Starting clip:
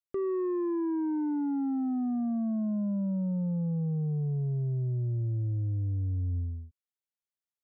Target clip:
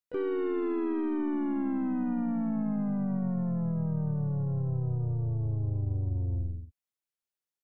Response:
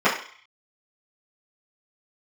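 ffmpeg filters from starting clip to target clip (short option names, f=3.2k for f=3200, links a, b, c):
-filter_complex "[0:a]aeval=exprs='0.0422*(cos(1*acos(clip(val(0)/0.0422,-1,1)))-cos(1*PI/2))+0.00422*(cos(4*acos(clip(val(0)/0.0422,-1,1)))-cos(4*PI/2))':c=same,asplit=4[a][b][c][d];[b]asetrate=33038,aresample=44100,atempo=1.33484,volume=-13dB[e];[c]asetrate=35002,aresample=44100,atempo=1.25992,volume=-16dB[f];[d]asetrate=55563,aresample=44100,atempo=0.793701,volume=-9dB[g];[a][e][f][g]amix=inputs=4:normalize=0,volume=-1dB"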